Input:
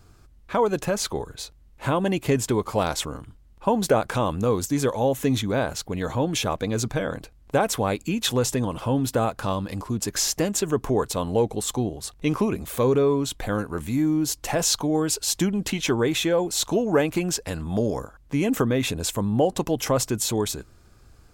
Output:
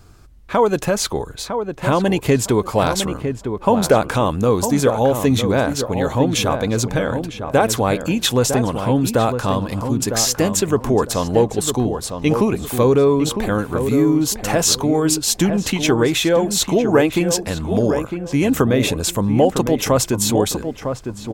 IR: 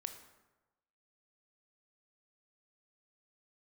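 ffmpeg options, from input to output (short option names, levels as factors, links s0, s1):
-filter_complex "[0:a]asplit=2[s0][s1];[s1]adelay=955,lowpass=f=1600:p=1,volume=0.447,asplit=2[s2][s3];[s3]adelay=955,lowpass=f=1600:p=1,volume=0.26,asplit=2[s4][s5];[s5]adelay=955,lowpass=f=1600:p=1,volume=0.26[s6];[s0][s2][s4][s6]amix=inputs=4:normalize=0,volume=2"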